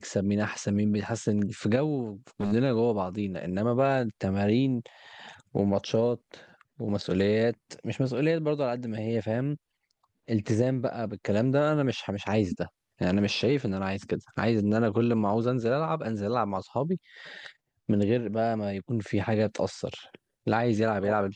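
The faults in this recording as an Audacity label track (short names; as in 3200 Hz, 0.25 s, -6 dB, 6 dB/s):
2.400000	2.530000	clipped -25 dBFS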